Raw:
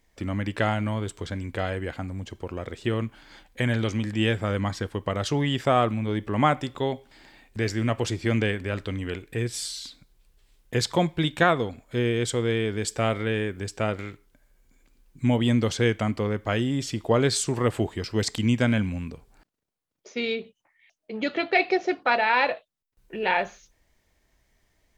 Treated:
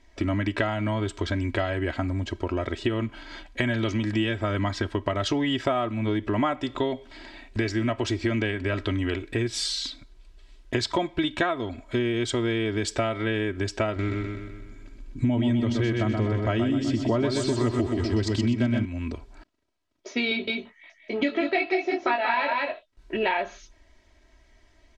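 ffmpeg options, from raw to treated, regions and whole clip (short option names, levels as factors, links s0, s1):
-filter_complex "[0:a]asettb=1/sr,asplit=3[s0][s1][s2];[s0]atrim=end=13.964[s3];[s1]atrim=start=13.96:end=18.85,asetpts=PTS-STARTPTS,afade=t=in:d=0.004:c=qsin,afade=t=out:st=4.886:d=0.004:c=qsin,lowshelf=f=350:g=9,aecho=1:1:126|252|378|504|630|756|882:0.562|0.298|0.158|0.0837|0.0444|0.0235|0.0125,atrim=end_sample=215649[s4];[s2]atrim=start=18.846[s5];[s3][s4]acrossfade=d=0.004:c1=hsin:c2=qsin[s6];[s6][s5]acrossfade=d=0.004:c1=qsin:c2=hsin,asettb=1/sr,asplit=3[s7][s8][s9];[s7]atrim=end=20.294[s10];[s8]atrim=start=20.29:end=23.17,asetpts=PTS-STARTPTS,afade=t=in:d=0.004:c=qsin,afade=t=out:st=2.876:d=0.004:c=qsin,asplit=2[s11][s12];[s12]adelay=21,volume=0.708[s13];[s11][s13]amix=inputs=2:normalize=0,atrim=end_sample=127008,aecho=1:1:184:0.562,atrim=end_sample=127008[s14];[s9]atrim=start=23.166[s15];[s10][s14]acrossfade=d=0.004:c1=hsin:c2=qsin[s16];[s16][s15]acrossfade=d=0.004:c1=qsin:c2=hsin,lowpass=5400,aecho=1:1:3.1:0.73,acompressor=threshold=0.0355:ratio=6,volume=2.11"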